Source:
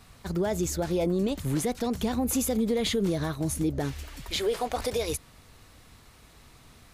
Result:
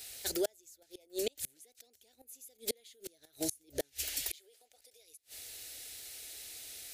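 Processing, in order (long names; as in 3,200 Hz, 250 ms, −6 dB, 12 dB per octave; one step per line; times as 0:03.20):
spectral tilt +4 dB per octave
gate with flip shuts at −21 dBFS, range −36 dB
phaser with its sweep stopped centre 450 Hz, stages 4
level +2.5 dB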